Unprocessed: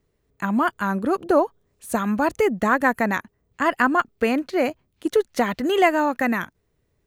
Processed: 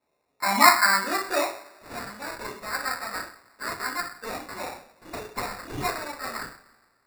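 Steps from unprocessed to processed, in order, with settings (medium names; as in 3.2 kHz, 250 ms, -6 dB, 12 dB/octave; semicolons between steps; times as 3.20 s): band-pass sweep 900 Hz -> 5.3 kHz, 0.49–2.11 s; two-slope reverb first 0.44 s, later 1.8 s, from -22 dB, DRR -9.5 dB; sample-and-hold 14×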